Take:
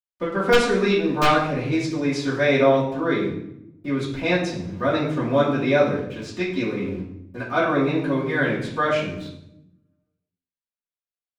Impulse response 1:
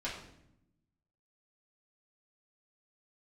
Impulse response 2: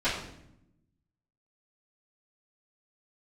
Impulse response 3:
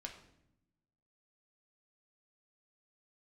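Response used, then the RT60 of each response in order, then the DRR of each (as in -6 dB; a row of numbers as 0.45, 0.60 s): 2; 0.75, 0.75, 0.80 s; -8.5, -16.0, 1.0 dB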